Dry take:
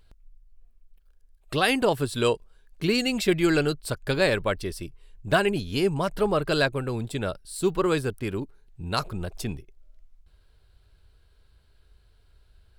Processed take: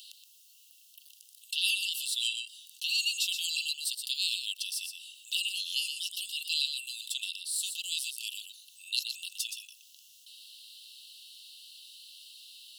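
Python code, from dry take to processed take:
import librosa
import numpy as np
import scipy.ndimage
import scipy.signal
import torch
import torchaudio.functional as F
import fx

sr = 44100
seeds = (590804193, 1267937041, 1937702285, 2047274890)

y = scipy.signal.sosfilt(scipy.signal.cheby1(10, 1.0, 2700.0, 'highpass', fs=sr, output='sos'), x)
y = y + 10.0 ** (-13.0 / 20.0) * np.pad(y, (int(122 * sr / 1000.0), 0))[:len(y)]
y = fx.env_flatten(y, sr, amount_pct=50)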